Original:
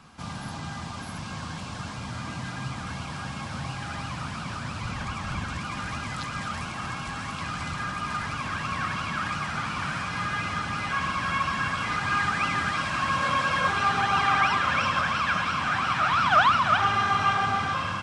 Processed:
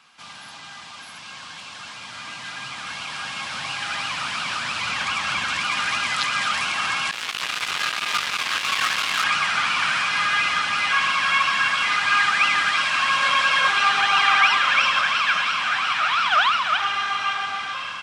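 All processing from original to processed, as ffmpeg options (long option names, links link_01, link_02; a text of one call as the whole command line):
ffmpeg -i in.wav -filter_complex "[0:a]asettb=1/sr,asplit=3[link_01][link_02][link_03];[link_01]atrim=end=7.114[link_04];[link_02]atrim=start=7.11:end=9.24,asetpts=PTS-STARTPTS,afade=type=in:duration=0.004:curve=qsin,afade=type=out:start_time=2.126:duration=0.004:curve=qsin,lowpass=9800,flanger=delay=17.5:depth=6.5:speed=1.1,acrusher=bits=4:mix=0:aa=0.5[link_05];[link_03]atrim=start=9.236[link_06];[link_04][link_05]acrossfade=duration=0.004:curve1=hsin:curve2=qsin[link_07];[link_07][link_06]acrossfade=duration=0.004:curve1=qsin:curve2=hsin,highpass=frequency=1200:poles=1,equalizer=frequency=2900:width_type=o:width=1.5:gain=7,dynaudnorm=framelen=600:gausssize=11:maxgain=11.5dB,volume=-1.5dB" out.wav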